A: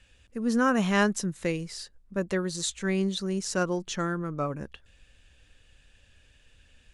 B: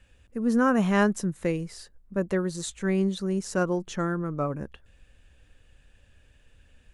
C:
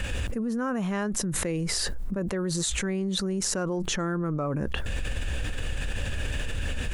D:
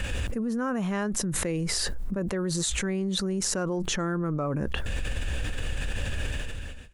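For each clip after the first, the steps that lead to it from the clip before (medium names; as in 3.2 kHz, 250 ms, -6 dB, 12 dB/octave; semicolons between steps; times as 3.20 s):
peaking EQ 4.5 kHz -9 dB 2.3 oct; trim +2.5 dB
level flattener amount 100%; trim -9 dB
fade out at the end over 0.69 s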